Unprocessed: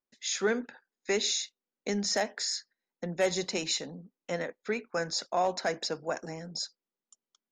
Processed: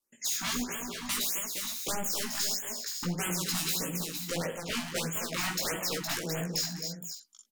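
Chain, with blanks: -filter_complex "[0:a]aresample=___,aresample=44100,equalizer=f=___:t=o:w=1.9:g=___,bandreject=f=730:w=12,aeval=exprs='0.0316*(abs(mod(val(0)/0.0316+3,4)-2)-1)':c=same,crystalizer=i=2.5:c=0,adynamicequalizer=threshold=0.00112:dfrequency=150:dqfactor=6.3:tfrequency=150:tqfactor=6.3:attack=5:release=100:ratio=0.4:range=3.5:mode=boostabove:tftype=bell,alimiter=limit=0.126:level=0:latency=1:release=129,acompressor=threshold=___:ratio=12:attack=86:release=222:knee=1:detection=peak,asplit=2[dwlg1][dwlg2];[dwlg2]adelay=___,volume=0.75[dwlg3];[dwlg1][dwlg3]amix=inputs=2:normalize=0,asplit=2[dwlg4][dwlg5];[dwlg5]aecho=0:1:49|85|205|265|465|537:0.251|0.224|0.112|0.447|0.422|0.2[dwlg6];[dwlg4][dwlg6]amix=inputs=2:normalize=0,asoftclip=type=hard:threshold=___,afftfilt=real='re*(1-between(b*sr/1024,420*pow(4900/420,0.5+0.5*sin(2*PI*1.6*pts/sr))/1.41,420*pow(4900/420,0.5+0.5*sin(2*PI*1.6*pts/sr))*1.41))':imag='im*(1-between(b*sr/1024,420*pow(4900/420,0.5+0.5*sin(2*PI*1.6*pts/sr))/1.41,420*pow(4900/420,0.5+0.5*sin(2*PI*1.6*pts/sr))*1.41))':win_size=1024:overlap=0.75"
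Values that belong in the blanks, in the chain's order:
32000, 260, 3, 0.02, 17, 0.0531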